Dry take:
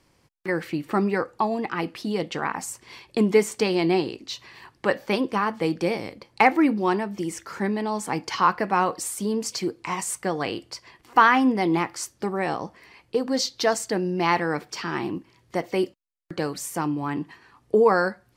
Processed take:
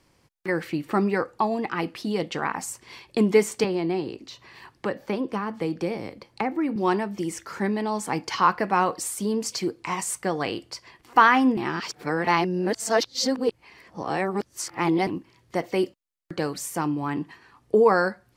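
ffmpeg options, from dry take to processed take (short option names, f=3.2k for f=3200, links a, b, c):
-filter_complex "[0:a]asettb=1/sr,asplit=3[a][b][c];[a]atrim=end=3.644[d];[b]atrim=start=3.64:end=6.76,asetpts=PTS-STARTPTS,afade=t=in:d=0.004:c=qsin,afade=t=out:st=3.116:d=0.004:c=qsin,acrossover=split=400|1700[e][f][g];[e]acompressor=threshold=-26dB:ratio=4[h];[f]acompressor=threshold=-31dB:ratio=4[i];[g]acompressor=threshold=-43dB:ratio=4[j];[h][i][j]amix=inputs=3:normalize=0[k];[c]atrim=start=6.756[l];[d][k]acrossfade=d=0.004:c1=hsin:c2=qsin[m];[m][l]acrossfade=d=0.004:c1=qsin:c2=hsin,asplit=3[n][o][p];[n]atrim=end=11.572[q];[o]atrim=start=11.568:end=15.072,asetpts=PTS-STARTPTS,areverse[r];[p]atrim=start=15.068[s];[q][r]acrossfade=d=0.004:c1=hsin:c2=hsin[t];[t][s]acrossfade=d=0.004:c1=hsin:c2=hsin"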